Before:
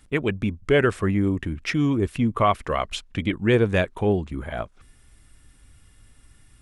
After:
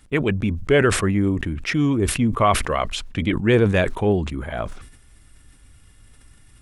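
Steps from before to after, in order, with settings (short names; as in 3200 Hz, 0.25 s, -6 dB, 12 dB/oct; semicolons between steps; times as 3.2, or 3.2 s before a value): sustainer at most 73 dB/s; gain +2 dB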